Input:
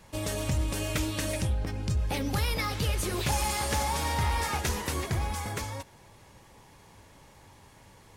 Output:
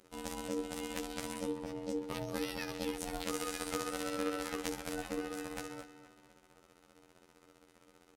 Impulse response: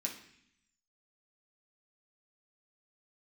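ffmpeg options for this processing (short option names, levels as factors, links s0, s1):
-filter_complex "[0:a]afftfilt=real='hypot(re,im)*cos(PI*b)':imag='0':win_size=2048:overlap=0.75,aeval=exprs='val(0)*sin(2*PI*380*n/s)':c=same,asplit=2[s0][s1];[s1]adelay=242,lowpass=f=5000:p=1,volume=0.224,asplit=2[s2][s3];[s3]adelay=242,lowpass=f=5000:p=1,volume=0.43,asplit=2[s4][s5];[s5]adelay=242,lowpass=f=5000:p=1,volume=0.43,asplit=2[s6][s7];[s7]adelay=242,lowpass=f=5000:p=1,volume=0.43[s8];[s0][s2][s4][s6][s8]amix=inputs=5:normalize=0,volume=0.668"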